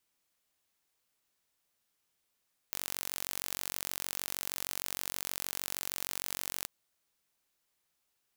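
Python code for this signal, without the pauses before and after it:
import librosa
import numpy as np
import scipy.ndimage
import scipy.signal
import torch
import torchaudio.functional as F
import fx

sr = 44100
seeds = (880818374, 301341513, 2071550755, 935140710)

y = 10.0 ** (-9.0 / 20.0) * (np.mod(np.arange(round(3.94 * sr)), round(sr / 46.4)) == 0)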